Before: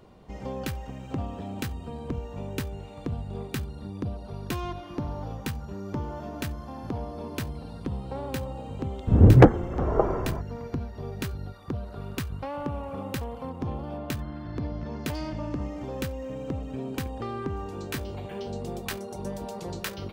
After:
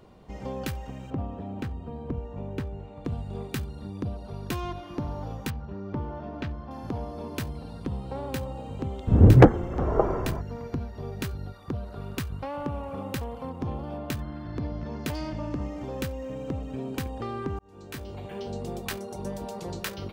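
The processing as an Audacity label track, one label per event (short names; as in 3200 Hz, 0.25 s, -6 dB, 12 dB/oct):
1.100000	3.050000	LPF 1200 Hz 6 dB/oct
5.500000	6.710000	air absorption 230 m
17.590000	18.650000	fade in equal-power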